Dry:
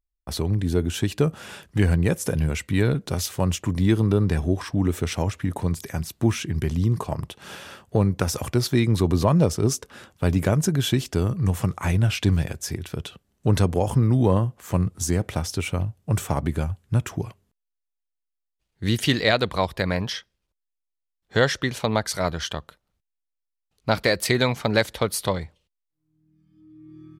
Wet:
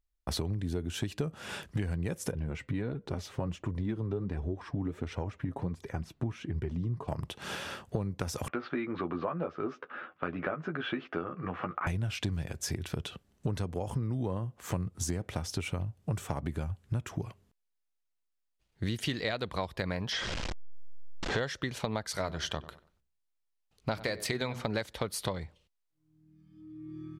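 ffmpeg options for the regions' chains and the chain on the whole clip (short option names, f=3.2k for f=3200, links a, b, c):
-filter_complex "[0:a]asettb=1/sr,asplit=3[a][b][c];[a]atrim=end=2.314[d];[b]atrim=start=2.31:end=7.08,asetpts=PTS-STARTPTS,afade=t=in:d=0.004:c=qsin,afade=t=out:st=4.766:d=0.004:c=qsin,lowpass=f=1.4k:p=1,flanger=delay=2:depth=5.7:regen=40:speed=1.4:shape=sinusoidal[e];[c]atrim=start=7.076[f];[d][e]acrossfade=d=0.004:c1=hsin:c2=qsin[g];[g][f]acrossfade=d=0.004:c1=qsin:c2=hsin,asettb=1/sr,asplit=3[h][i][j];[h]atrim=end=8.484[k];[i]atrim=start=8.48:end=11.87,asetpts=PTS-STARTPTS,afade=t=in:d=0.004:c=qsin,afade=t=out:st=3.386:d=0.004:c=qsin,highpass=400,equalizer=f=430:t=q:w=4:g=-5,equalizer=f=630:t=q:w=4:g=-3,equalizer=f=930:t=q:w=4:g=-6,equalizer=f=1.3k:t=q:w=4:g=7,equalizer=f=2k:t=q:w=4:g=-4,lowpass=f=2.3k:w=0.5412,lowpass=f=2.3k:w=1.3066,asplit=2[l][m];[m]adelay=12,volume=-4.5dB[n];[l][n]amix=inputs=2:normalize=0,atrim=end_sample=149499[o];[j]atrim=start=11.866[p];[k][o]acrossfade=d=0.004:c1=hsin:c2=qsin[q];[q][p]acrossfade=d=0.004:c1=qsin:c2=hsin,asettb=1/sr,asplit=3[r][s][t];[r]atrim=end=20.124[u];[s]atrim=start=20.12:end=21.4,asetpts=PTS-STARTPTS,afade=t=in:d=0.004:c=qsin,afade=t=out:st=1.276:d=0.004:c=qsin,aeval=exprs='val(0)+0.5*0.0531*sgn(val(0))':c=same,lowpass=f=6.9k:w=0.5412,lowpass=f=6.9k:w=1.3066,bass=f=250:g=-4,treble=f=4k:g=-3[v];[t]atrim=start=21.396[w];[u][v]acrossfade=d=0.004:c1=hsin:c2=qsin[x];[x][w]acrossfade=d=0.004:c1=qsin:c2=hsin,asettb=1/sr,asplit=3[y][z][aa];[y]atrim=end=22.034[ab];[z]atrim=start=22.03:end=24.65,asetpts=PTS-STARTPTS,afade=t=in:d=0.004:c=qsin,afade=t=out:st=2.616:d=0.004:c=qsin,bandreject=f=60:t=h:w=6,bandreject=f=120:t=h:w=6,bandreject=f=180:t=h:w=6,bandreject=f=240:t=h:w=6,bandreject=f=300:t=h:w=6,bandreject=f=360:t=h:w=6,bandreject=f=420:t=h:w=6,asplit=2[ac][ad];[ad]adelay=94,lowpass=f=2.3k:p=1,volume=-18dB,asplit=2[ae][af];[af]adelay=94,lowpass=f=2.3k:p=1,volume=0.29,asplit=2[ag][ah];[ah]adelay=94,lowpass=f=2.3k:p=1,volume=0.29[ai];[ac][ae][ag][ai]amix=inputs=4:normalize=0,atrim=end_sample=115542[aj];[aa]atrim=start=24.646[ak];[ab][aj]acrossfade=d=0.004:c1=hsin:c2=qsin[al];[al][ak]acrossfade=d=0.004:c1=qsin:c2=hsin,highshelf=f=10k:g=-7.5,acompressor=threshold=-32dB:ratio=6,volume=1.5dB"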